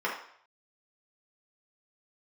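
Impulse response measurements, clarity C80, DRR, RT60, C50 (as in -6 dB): 9.0 dB, -6.0 dB, 0.60 s, 5.0 dB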